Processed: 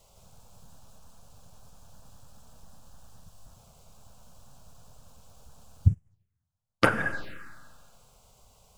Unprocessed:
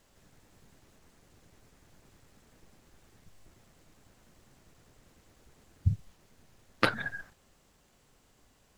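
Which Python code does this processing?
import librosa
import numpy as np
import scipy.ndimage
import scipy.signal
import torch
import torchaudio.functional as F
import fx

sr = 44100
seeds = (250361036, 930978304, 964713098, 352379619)

p1 = fx.rev_schroeder(x, sr, rt60_s=2.0, comb_ms=33, drr_db=12.5)
p2 = 10.0 ** (-21.5 / 20.0) * np.tanh(p1 / 10.0 ** (-21.5 / 20.0))
p3 = p1 + (p2 * 10.0 ** (-8.0 / 20.0))
p4 = fx.env_phaser(p3, sr, low_hz=280.0, high_hz=4100.0, full_db=-28.0)
p5 = fx.upward_expand(p4, sr, threshold_db=-45.0, expansion=2.5, at=(5.88, 6.86))
y = p5 * 10.0 ** (5.0 / 20.0)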